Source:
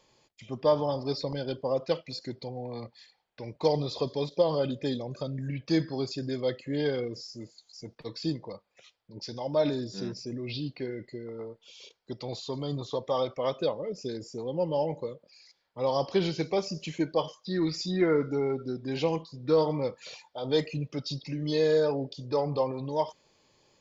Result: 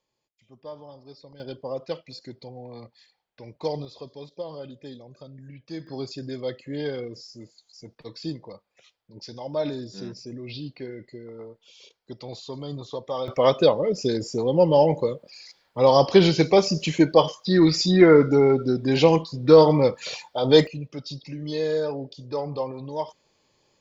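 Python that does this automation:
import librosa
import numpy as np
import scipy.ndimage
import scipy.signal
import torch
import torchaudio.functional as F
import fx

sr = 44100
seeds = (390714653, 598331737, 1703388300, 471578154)

y = fx.gain(x, sr, db=fx.steps((0.0, -15.5), (1.4, -3.0), (3.85, -10.0), (5.87, -1.0), (13.28, 11.0), (20.67, -1.0)))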